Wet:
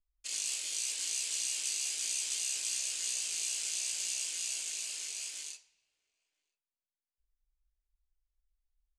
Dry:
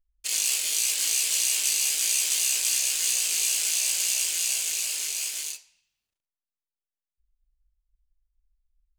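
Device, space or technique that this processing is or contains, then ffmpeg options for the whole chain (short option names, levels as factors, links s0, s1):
one-band saturation: -filter_complex "[0:a]acrossover=split=340|3100[s0][s1][s2];[s1]asoftclip=type=tanh:threshold=0.0141[s3];[s0][s3][s2]amix=inputs=3:normalize=0,lowpass=f=9200:w=0.5412,lowpass=f=9200:w=1.3066,asplit=2[s4][s5];[s5]adelay=991.3,volume=0.0316,highshelf=f=4000:g=-22.3[s6];[s4][s6]amix=inputs=2:normalize=0,volume=0.355"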